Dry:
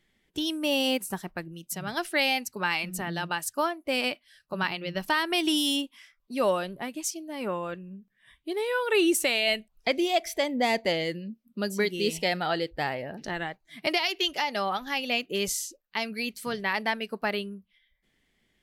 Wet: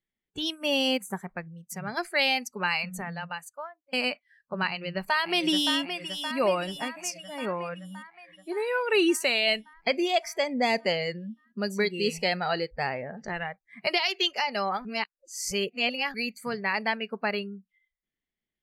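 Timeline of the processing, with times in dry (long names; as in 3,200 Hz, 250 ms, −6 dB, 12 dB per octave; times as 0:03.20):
0:02.83–0:03.93: fade out
0:04.68–0:05.74: delay throw 570 ms, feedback 70%, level −7 dB
0:14.85–0:16.14: reverse
whole clip: high-shelf EQ 8,000 Hz −10 dB; noise reduction from a noise print of the clip's start 20 dB; dynamic equaliser 4,400 Hz, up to +4 dB, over −43 dBFS, Q 0.92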